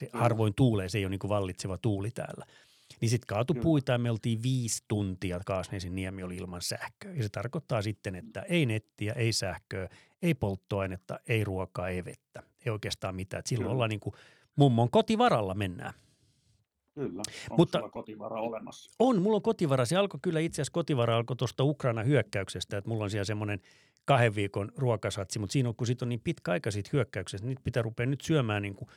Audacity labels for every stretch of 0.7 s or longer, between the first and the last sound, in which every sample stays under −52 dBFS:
15.990000	16.970000	silence